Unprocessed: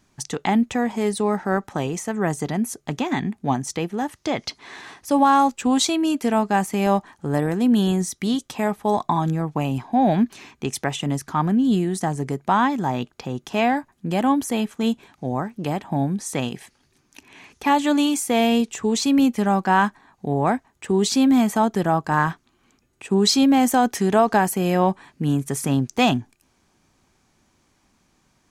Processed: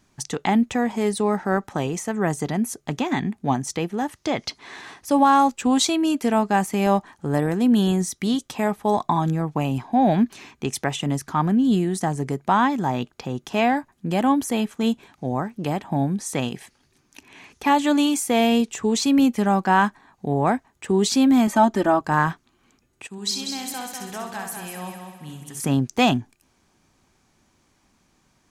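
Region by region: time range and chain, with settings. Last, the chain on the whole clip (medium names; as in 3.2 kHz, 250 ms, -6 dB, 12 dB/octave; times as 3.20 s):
21.47–22.01 s: treble shelf 9.5 kHz -8.5 dB + comb 3.3 ms, depth 80%
23.07–25.60 s: amplifier tone stack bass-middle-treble 5-5-5 + multi-head delay 65 ms, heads first and third, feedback 54%, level -6.5 dB
whole clip: none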